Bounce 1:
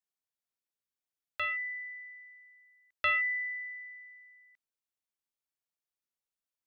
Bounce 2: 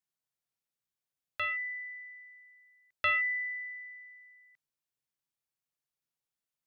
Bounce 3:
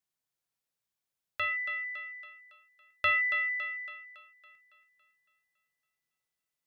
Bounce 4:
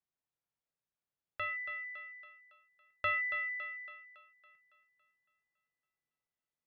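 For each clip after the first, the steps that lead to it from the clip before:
parametric band 140 Hz +10 dB 0.56 octaves
feedback echo with a high-pass in the loop 279 ms, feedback 53%, high-pass 280 Hz, level −9 dB; level +1.5 dB
low-pass filter 1,400 Hz 6 dB per octave; level −1.5 dB

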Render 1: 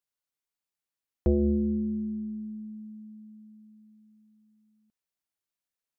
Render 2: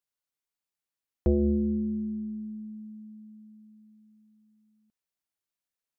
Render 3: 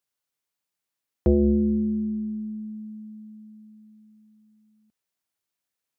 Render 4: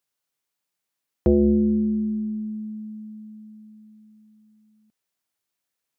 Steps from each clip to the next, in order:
no processing that can be heard
high-pass filter 59 Hz; level +5 dB
parametric band 65 Hz −5 dB 0.86 octaves; level +2.5 dB

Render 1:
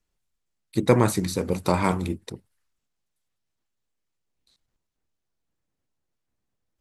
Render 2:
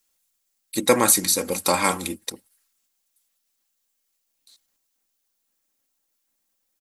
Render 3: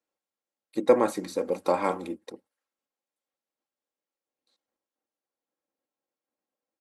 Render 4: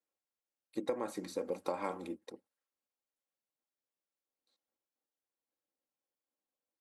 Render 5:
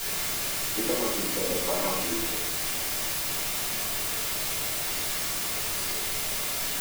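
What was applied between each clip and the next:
RIAA equalisation recording; comb filter 3.7 ms, depth 48%; level +2.5 dB
resonant band-pass 480 Hz, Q 1
downward compressor 10 to 1, threshold −24 dBFS, peak gain reduction 12 dB; level −7 dB
bit-depth reduction 6 bits, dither triangular; convolution reverb RT60 0.65 s, pre-delay 4 ms, DRR −6.5 dB

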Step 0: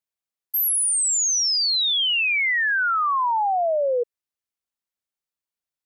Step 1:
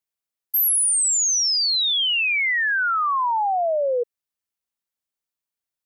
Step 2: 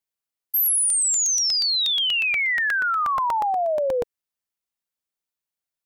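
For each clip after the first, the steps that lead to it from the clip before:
high-shelf EQ 9,100 Hz +3.5 dB
regular buffer underruns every 0.12 s, samples 64, repeat, from 0:00.66; level −1 dB

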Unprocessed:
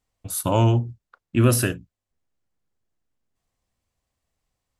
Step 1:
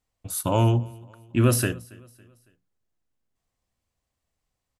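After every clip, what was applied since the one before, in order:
repeating echo 278 ms, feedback 44%, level −24 dB
level −2 dB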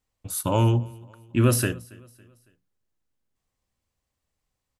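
notch filter 690 Hz, Q 12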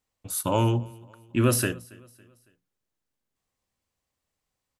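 low-shelf EQ 110 Hz −8.5 dB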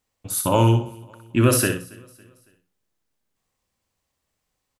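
repeating echo 62 ms, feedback 21%, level −7 dB
level +4.5 dB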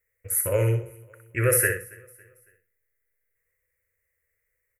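drawn EQ curve 100 Hz 0 dB, 250 Hz −24 dB, 480 Hz +6 dB, 850 Hz −22 dB, 2,000 Hz +14 dB, 3,600 Hz −30 dB, 5,300 Hz −13 dB, 13,000 Hz +8 dB
level −2 dB

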